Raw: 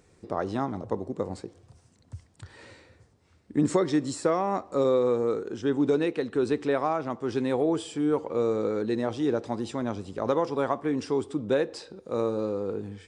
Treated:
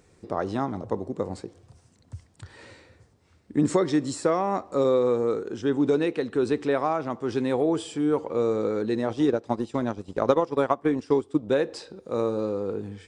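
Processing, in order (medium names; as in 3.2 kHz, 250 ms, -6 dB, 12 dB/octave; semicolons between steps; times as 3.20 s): 9.09–11.50 s: transient shaper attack +6 dB, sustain -11 dB; trim +1.5 dB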